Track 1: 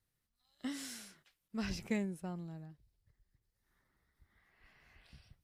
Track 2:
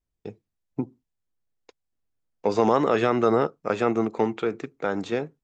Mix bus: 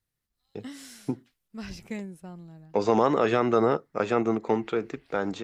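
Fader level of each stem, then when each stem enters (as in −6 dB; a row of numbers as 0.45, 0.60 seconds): 0.0, −1.5 decibels; 0.00, 0.30 seconds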